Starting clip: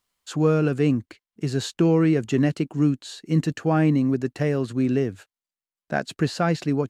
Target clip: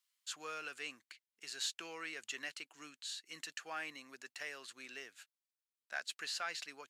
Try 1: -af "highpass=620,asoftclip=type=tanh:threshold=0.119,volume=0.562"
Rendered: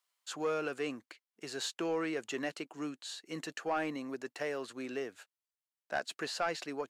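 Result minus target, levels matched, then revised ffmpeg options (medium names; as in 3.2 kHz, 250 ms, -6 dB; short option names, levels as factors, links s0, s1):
500 Hz band +11.0 dB
-af "highpass=1900,asoftclip=type=tanh:threshold=0.119,volume=0.562"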